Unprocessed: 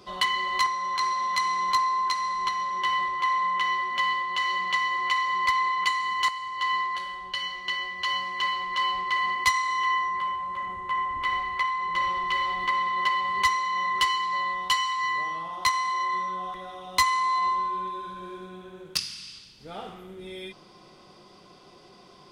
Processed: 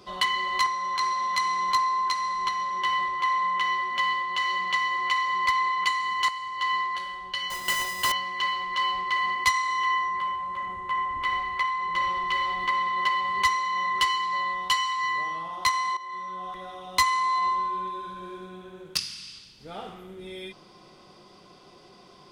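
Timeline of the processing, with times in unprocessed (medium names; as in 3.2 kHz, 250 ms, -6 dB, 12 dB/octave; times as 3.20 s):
7.50–8.12 s: square wave that keeps the level
15.97–16.63 s: fade in linear, from -14.5 dB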